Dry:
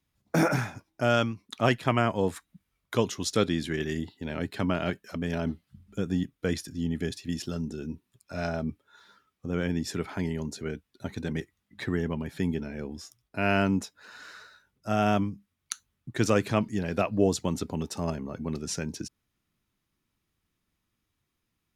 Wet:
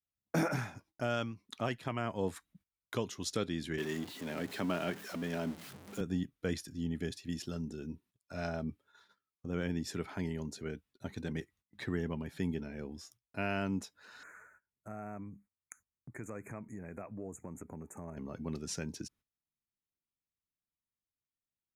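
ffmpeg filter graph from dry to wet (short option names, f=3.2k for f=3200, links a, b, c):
-filter_complex "[0:a]asettb=1/sr,asplit=3[a][b][c];[a]atrim=end=3.784[d];[b]atrim=start=3.78:end=6.01,asetpts=PTS-STARTPTS,afade=t=in:d=0.004:c=qsin,afade=t=out:st=2.226:d=0.004:c=qsin,aeval=exprs='val(0)+0.5*0.0158*sgn(val(0))':c=same,highpass=170[e];[c]atrim=start=6.006[f];[d][e]acrossfade=d=0.004:c1=hsin:c2=qsin[g];[g][f]acrossfade=d=0.004:c1=qsin:c2=hsin,asettb=1/sr,asplit=3[h][i][j];[h]atrim=end=14.234[k];[i]atrim=start=14.23:end=18.17,asetpts=PTS-STARTPTS,afade=t=in:d=0.004:c=qsin,afade=t=out:st=3.936:d=0.004:c=qsin,acompressor=threshold=-37dB:ratio=3:attack=3.2:release=140:knee=1:detection=peak,asuperstop=centerf=4000:order=20:qfactor=1[l];[j]atrim=start=18.166[m];[k][l]acrossfade=d=0.004:c1=hsin:c2=qsin[n];[n][m]acrossfade=d=0.004:c1=qsin:c2=hsin,agate=range=-17dB:threshold=-56dB:ratio=16:detection=peak,alimiter=limit=-14.5dB:level=0:latency=1:release=326,volume=-6.5dB"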